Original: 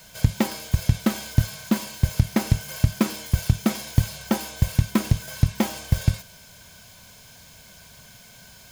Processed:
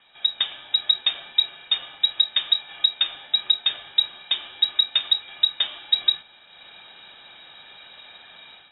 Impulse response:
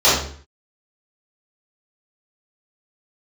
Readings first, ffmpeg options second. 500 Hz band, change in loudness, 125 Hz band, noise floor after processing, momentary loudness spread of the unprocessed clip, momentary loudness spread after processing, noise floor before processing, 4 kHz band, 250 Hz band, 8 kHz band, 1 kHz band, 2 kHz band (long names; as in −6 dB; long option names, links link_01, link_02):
below −15 dB, +3.0 dB, below −40 dB, −51 dBFS, 4 LU, 6 LU, −49 dBFS, +18.0 dB, below −30 dB, below −40 dB, −8.0 dB, −1.0 dB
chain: -af "lowpass=frequency=3300:width_type=q:width=0.5098,lowpass=frequency=3300:width_type=q:width=0.6013,lowpass=frequency=3300:width_type=q:width=0.9,lowpass=frequency=3300:width_type=q:width=2.563,afreqshift=-3900,dynaudnorm=framelen=190:gausssize=3:maxgain=11.5dB,volume=-6dB"